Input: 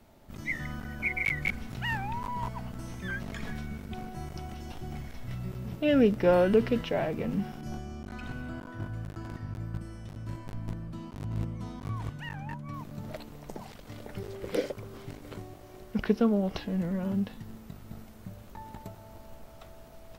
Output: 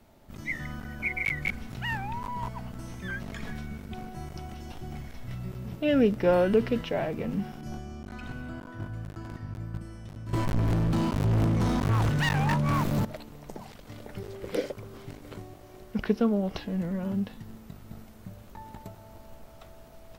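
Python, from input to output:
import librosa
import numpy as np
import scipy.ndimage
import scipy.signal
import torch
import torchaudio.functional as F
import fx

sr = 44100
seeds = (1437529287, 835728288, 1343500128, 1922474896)

y = fx.leveller(x, sr, passes=5, at=(10.33, 13.05))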